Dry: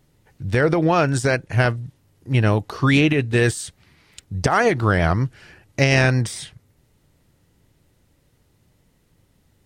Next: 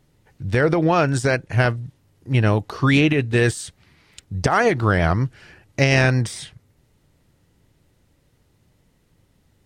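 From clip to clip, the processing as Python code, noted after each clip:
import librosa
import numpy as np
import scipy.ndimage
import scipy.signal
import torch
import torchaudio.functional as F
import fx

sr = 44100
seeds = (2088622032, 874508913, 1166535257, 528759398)

y = fx.high_shelf(x, sr, hz=9700.0, db=-4.5)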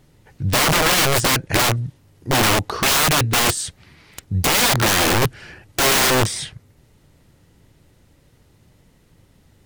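y = (np.mod(10.0 ** (18.0 / 20.0) * x + 1.0, 2.0) - 1.0) / 10.0 ** (18.0 / 20.0)
y = y * librosa.db_to_amplitude(6.5)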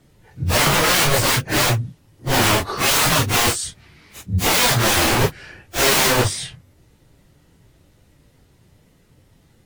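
y = fx.phase_scramble(x, sr, seeds[0], window_ms=100)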